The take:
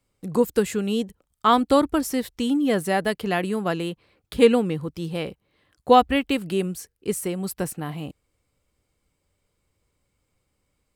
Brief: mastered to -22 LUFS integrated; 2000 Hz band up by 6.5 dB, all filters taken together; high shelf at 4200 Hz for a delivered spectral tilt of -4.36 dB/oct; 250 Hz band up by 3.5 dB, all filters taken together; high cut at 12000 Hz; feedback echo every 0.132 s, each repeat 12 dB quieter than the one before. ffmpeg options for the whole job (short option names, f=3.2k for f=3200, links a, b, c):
-af "lowpass=12k,equalizer=f=250:t=o:g=4,equalizer=f=2k:t=o:g=6,highshelf=f=4.2k:g=8.5,aecho=1:1:132|264|396:0.251|0.0628|0.0157,volume=-2dB"